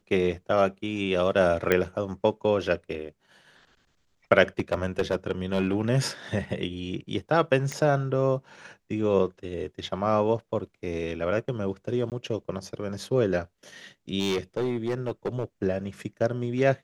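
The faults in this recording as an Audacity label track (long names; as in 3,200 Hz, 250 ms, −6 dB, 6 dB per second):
1.720000	1.720000	click −9 dBFS
4.590000	5.900000	clipping −18 dBFS
7.720000	7.720000	click −18 dBFS
12.100000	12.120000	drop-out 18 ms
14.190000	15.440000	clipping −22.5 dBFS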